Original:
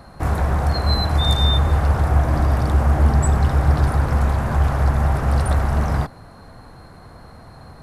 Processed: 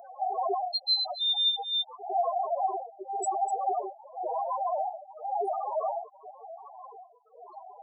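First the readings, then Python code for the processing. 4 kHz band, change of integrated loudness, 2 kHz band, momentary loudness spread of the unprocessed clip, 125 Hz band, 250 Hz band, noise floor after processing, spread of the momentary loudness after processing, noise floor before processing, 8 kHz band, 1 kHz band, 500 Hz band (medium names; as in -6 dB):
-1.0 dB, -10.5 dB, under -40 dB, 4 LU, under -40 dB, under -20 dB, -55 dBFS, 22 LU, -43 dBFS, -9.0 dB, -2.5 dB, -5.0 dB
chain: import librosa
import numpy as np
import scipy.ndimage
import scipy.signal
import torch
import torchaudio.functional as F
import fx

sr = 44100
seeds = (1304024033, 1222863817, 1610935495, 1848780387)

y = scipy.signal.sosfilt(scipy.signal.ellip(4, 1.0, 60, 370.0, 'highpass', fs=sr, output='sos'), x)
y = y + 10.0 ** (-4.0 / 20.0) * np.pad(y, (int(249 * sr / 1000.0), 0))[:len(y)]
y = fx.rider(y, sr, range_db=10, speed_s=0.5)
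y = 10.0 ** (-14.0 / 20.0) * np.tanh(y / 10.0 ** (-14.0 / 20.0))
y = fx.spec_topn(y, sr, count=2)
y = fx.stagger_phaser(y, sr, hz=0.94)
y = y * librosa.db_to_amplitude(7.5)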